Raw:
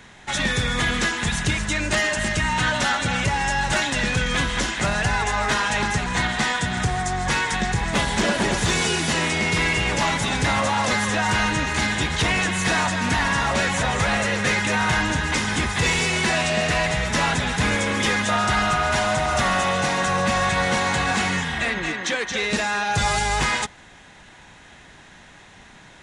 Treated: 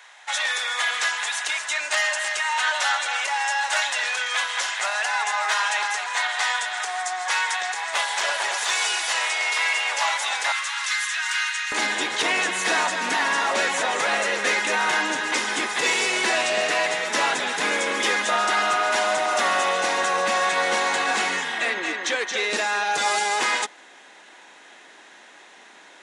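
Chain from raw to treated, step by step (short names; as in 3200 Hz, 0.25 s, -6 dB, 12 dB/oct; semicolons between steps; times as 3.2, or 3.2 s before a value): HPF 690 Hz 24 dB/oct, from 10.52 s 1400 Hz, from 11.72 s 310 Hz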